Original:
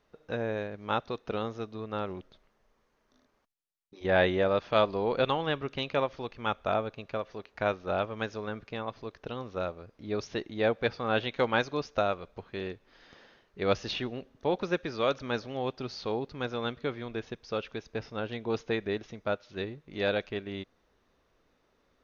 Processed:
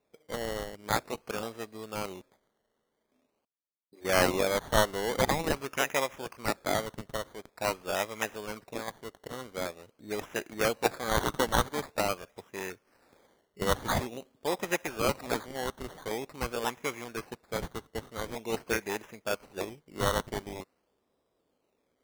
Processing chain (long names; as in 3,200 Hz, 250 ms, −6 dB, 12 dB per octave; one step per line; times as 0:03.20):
high-pass filter 250 Hz 6 dB per octave
low-pass that shuts in the quiet parts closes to 850 Hz, open at −27 dBFS
flat-topped bell 3,100 Hz +10.5 dB 1.2 octaves
sample-and-hold swept by an LFO 14×, swing 60% 0.46 Hz
level −1.5 dB